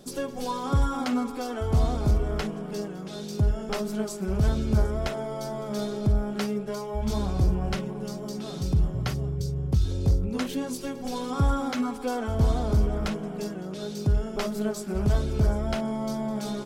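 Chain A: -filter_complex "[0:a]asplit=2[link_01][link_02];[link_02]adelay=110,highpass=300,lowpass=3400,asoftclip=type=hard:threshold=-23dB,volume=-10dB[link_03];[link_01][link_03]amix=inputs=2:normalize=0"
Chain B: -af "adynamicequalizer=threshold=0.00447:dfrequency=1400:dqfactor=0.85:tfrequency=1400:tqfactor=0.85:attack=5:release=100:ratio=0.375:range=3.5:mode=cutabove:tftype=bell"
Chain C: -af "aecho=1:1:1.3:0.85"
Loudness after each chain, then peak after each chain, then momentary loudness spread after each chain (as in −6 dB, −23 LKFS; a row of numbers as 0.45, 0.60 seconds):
−28.0, −28.5, −24.5 LKFS; −13.5, −14.0, −8.5 dBFS; 8, 9, 12 LU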